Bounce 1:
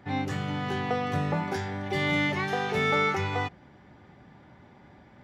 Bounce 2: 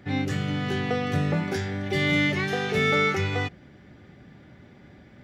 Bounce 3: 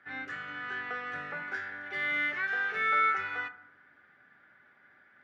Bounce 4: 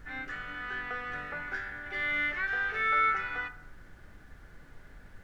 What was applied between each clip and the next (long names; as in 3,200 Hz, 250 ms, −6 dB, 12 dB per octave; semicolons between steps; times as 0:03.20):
parametric band 920 Hz −12 dB 0.73 octaves; level +4.5 dB
resonant band-pass 1,500 Hz, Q 4.4; on a send at −11 dB: convolution reverb RT60 0.95 s, pre-delay 6 ms; on the sum: level +4 dB
background noise brown −49 dBFS